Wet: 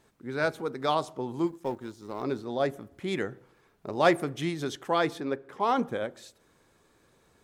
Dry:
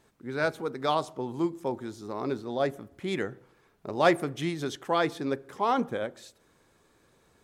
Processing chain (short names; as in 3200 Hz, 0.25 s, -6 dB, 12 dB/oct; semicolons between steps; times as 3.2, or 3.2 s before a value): 1.47–2.23 G.711 law mismatch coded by A; 5.2–5.6 tone controls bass -5 dB, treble -10 dB